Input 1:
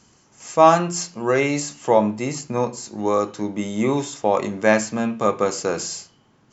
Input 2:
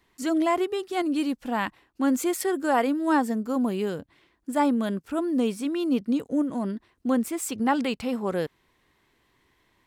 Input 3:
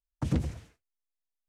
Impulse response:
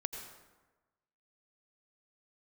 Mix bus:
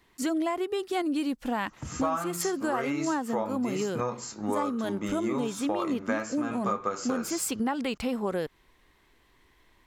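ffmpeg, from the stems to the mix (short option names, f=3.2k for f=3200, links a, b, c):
-filter_complex "[0:a]equalizer=f=1.3k:w=2.9:g=11.5,flanger=delay=9.6:depth=3.5:regen=-47:speed=0.35:shape=sinusoidal,adelay=1450,volume=-1dB[a];[1:a]asubboost=boost=3.5:cutoff=55,volume=2.5dB,asplit=2[b][c];[2:a]adelay=1600,volume=-7dB[d];[c]apad=whole_len=135857[e];[d][e]sidechaingate=range=-10dB:threshold=-55dB:ratio=16:detection=peak[f];[a][b][f]amix=inputs=3:normalize=0,acompressor=threshold=-25dB:ratio=12"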